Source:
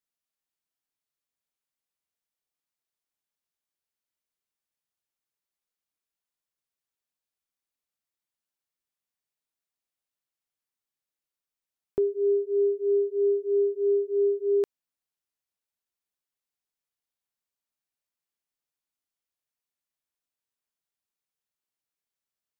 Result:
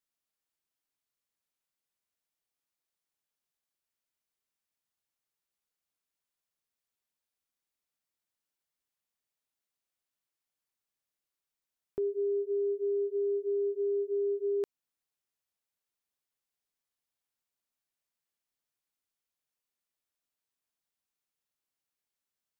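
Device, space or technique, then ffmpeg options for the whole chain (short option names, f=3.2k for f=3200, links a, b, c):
stacked limiters: -af "alimiter=limit=-23dB:level=0:latency=1,alimiter=level_in=2.5dB:limit=-24dB:level=0:latency=1:release=278,volume=-2.5dB"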